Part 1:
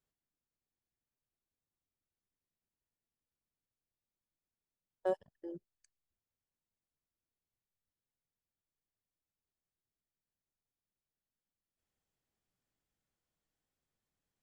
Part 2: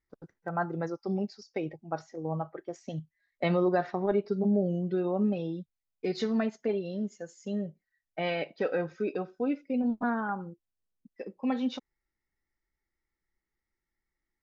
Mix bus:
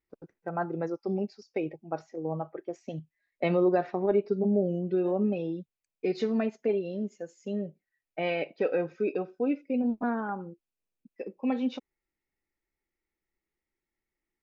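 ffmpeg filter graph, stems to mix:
-filter_complex "[0:a]volume=-14dB[a];[1:a]equalizer=f=400:w=0.59:g=8.5,volume=-5.5dB[b];[a][b]amix=inputs=2:normalize=0,equalizer=f=2.5k:t=o:w=0.36:g=9"

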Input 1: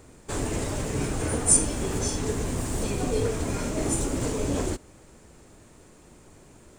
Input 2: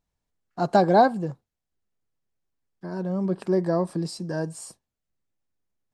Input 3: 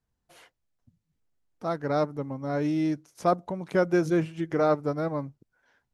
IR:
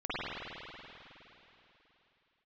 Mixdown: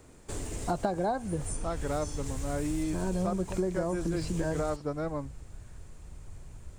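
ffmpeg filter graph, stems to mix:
-filter_complex "[0:a]asubboost=boost=9:cutoff=95,acrossover=split=680|1900|4800[a][b][c][d];[a]acompressor=threshold=-30dB:ratio=4[e];[b]acompressor=threshold=-52dB:ratio=4[f];[c]acompressor=threshold=-51dB:ratio=4[g];[d]acompressor=threshold=-39dB:ratio=4[h];[e][f][g][h]amix=inputs=4:normalize=0,volume=-4dB[i];[1:a]lowpass=f=4.4k:w=0.5412,lowpass=f=4.4k:w=1.3066,adelay=100,volume=1.5dB[j];[2:a]volume=-4dB[k];[i][j][k]amix=inputs=3:normalize=0,acompressor=threshold=-26dB:ratio=16"

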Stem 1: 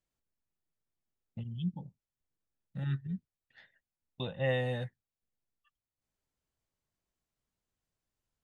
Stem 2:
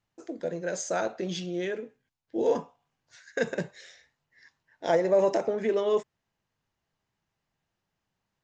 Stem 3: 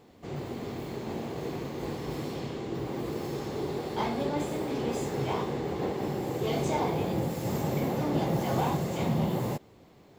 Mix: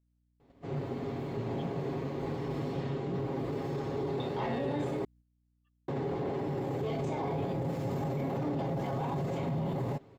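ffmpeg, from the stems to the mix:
-filter_complex "[0:a]acompressor=threshold=-36dB:ratio=6,aeval=exprs='val(0)+0.000708*(sin(2*PI*60*n/s)+sin(2*PI*2*60*n/s)/2+sin(2*PI*3*60*n/s)/3+sin(2*PI*4*60*n/s)/4+sin(2*PI*5*60*n/s)/5)':c=same,volume=-1.5dB[a];[2:a]lowpass=f=1.8k:p=1,aecho=1:1:7.3:0.5,alimiter=level_in=2dB:limit=-24dB:level=0:latency=1:release=11,volume=-2dB,adelay=400,volume=-0.5dB,asplit=3[b][c][d];[b]atrim=end=5.05,asetpts=PTS-STARTPTS,afade=t=out:st=5.046:d=0.004:c=hsin[e];[c]atrim=start=5.05:end=5.88,asetpts=PTS-STARTPTS,volume=0[f];[d]atrim=start=5.88,asetpts=PTS-STARTPTS,afade=t=in:d=0.004:c=hsin[g];[e][f][g]concat=n=3:v=0:a=1[h];[a][h]amix=inputs=2:normalize=0,agate=range=-8dB:threshold=-54dB:ratio=16:detection=peak"

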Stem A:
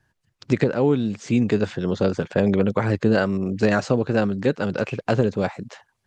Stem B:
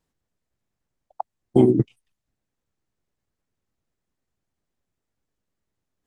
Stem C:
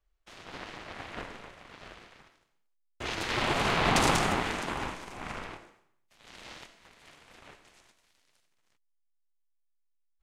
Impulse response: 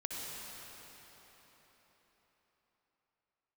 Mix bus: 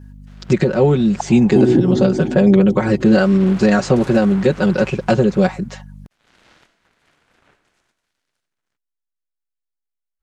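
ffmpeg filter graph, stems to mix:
-filter_complex "[0:a]aecho=1:1:5.4:0.86,crystalizer=i=1:c=0,volume=2dB[a];[1:a]aeval=exprs='val(0)+0.00708*(sin(2*PI*50*n/s)+sin(2*PI*2*50*n/s)/2+sin(2*PI*3*50*n/s)/3+sin(2*PI*4*50*n/s)/4+sin(2*PI*5*50*n/s)/5)':c=same,volume=-0.5dB,asplit=2[b][c];[c]volume=-3dB[d];[2:a]equalizer=f=1.5k:t=o:w=0.46:g=6,alimiter=limit=-19dB:level=0:latency=1:release=16,volume=-7.5dB[e];[3:a]atrim=start_sample=2205[f];[d][f]afir=irnorm=-1:irlink=0[g];[a][b][e][g]amix=inputs=4:normalize=0,equalizer=f=170:w=0.32:g=4.5,alimiter=limit=-3dB:level=0:latency=1:release=158"

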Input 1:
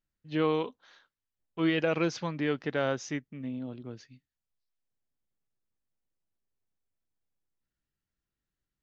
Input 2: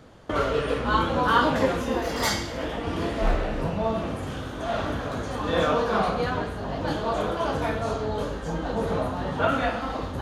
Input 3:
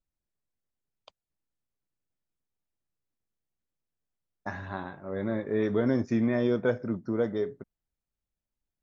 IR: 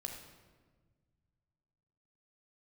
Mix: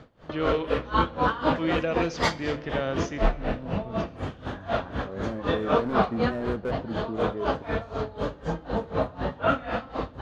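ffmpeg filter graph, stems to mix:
-filter_complex "[0:a]volume=-3.5dB,asplit=2[a][b];[b]volume=-4dB[c];[1:a]lowpass=4.2k,aeval=exprs='val(0)*pow(10,-22*(0.5-0.5*cos(2*PI*4*n/s))/20)':c=same,volume=2.5dB,asplit=2[d][e];[e]volume=-15dB[f];[2:a]lowpass=1.6k,asoftclip=type=hard:threshold=-22dB,volume=-3dB[g];[3:a]atrim=start_sample=2205[h];[c][f]amix=inputs=2:normalize=0[i];[i][h]afir=irnorm=-1:irlink=0[j];[a][d][g][j]amix=inputs=4:normalize=0"

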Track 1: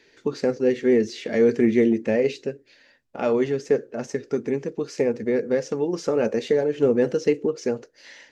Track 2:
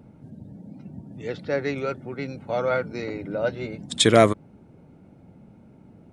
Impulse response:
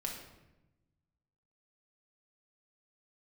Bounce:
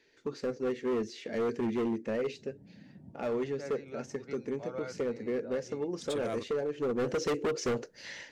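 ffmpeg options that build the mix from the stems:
-filter_complex "[0:a]acontrast=74,volume=-5.5dB,afade=t=in:st=6.96:d=0.33:silence=0.281838,asplit=2[a][b];[1:a]adelay=2100,volume=-12dB[c];[b]apad=whole_len=362860[d];[c][d]sidechaincompress=threshold=-39dB:ratio=16:attack=22:release=282[e];[a][e]amix=inputs=2:normalize=0,volume=27dB,asoftclip=hard,volume=-27dB"

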